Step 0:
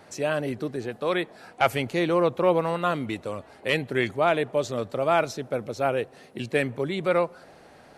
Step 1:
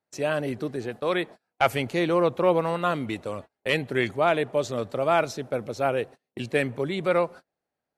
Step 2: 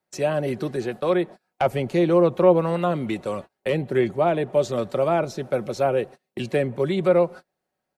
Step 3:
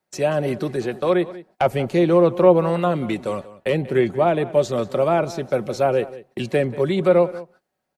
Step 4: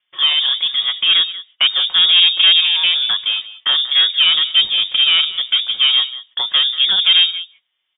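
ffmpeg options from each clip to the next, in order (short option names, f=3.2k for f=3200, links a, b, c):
-af "agate=range=-35dB:threshold=-39dB:ratio=16:detection=peak"
-filter_complex "[0:a]aecho=1:1:5.4:0.37,acrossover=split=370|850[a][b][c];[c]acompressor=threshold=-37dB:ratio=6[d];[a][b][d]amix=inputs=3:normalize=0,volume=4dB"
-filter_complex "[0:a]asplit=2[a][b];[b]adelay=186.6,volume=-17dB,highshelf=f=4k:g=-4.2[c];[a][c]amix=inputs=2:normalize=0,volume=2.5dB"
-af "aeval=exprs='(tanh(5.01*val(0)+0.35)-tanh(0.35))/5.01':c=same,lowpass=f=3.1k:t=q:w=0.5098,lowpass=f=3.1k:t=q:w=0.6013,lowpass=f=3.1k:t=q:w=0.9,lowpass=f=3.1k:t=q:w=2.563,afreqshift=-3700,volume=7.5dB"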